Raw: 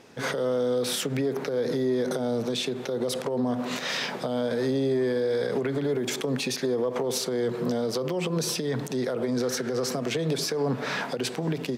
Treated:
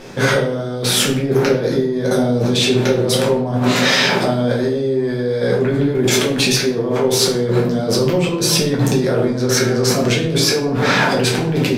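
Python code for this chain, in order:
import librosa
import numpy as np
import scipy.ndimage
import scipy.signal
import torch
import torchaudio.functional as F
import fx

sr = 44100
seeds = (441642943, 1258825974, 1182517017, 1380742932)

y = fx.low_shelf(x, sr, hz=92.0, db=11.0)
y = fx.over_compress(y, sr, threshold_db=-30.0, ratio=-1.0)
y = fx.room_shoebox(y, sr, seeds[0], volume_m3=76.0, walls='mixed', distance_m=1.0)
y = y * librosa.db_to_amplitude(8.5)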